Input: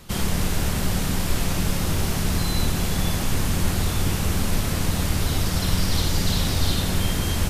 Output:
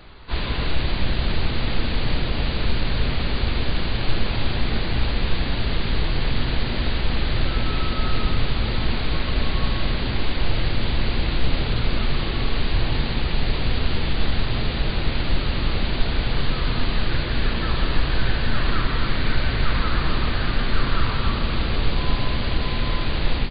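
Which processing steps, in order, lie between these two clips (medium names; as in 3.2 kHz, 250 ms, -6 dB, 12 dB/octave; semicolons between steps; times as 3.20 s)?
dynamic bell 3.5 kHz, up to -4 dB, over -40 dBFS, Q 0.78; wide varispeed 0.319×; frequency-shifting echo 244 ms, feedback 53%, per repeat +110 Hz, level -15.5 dB; trim +2.5 dB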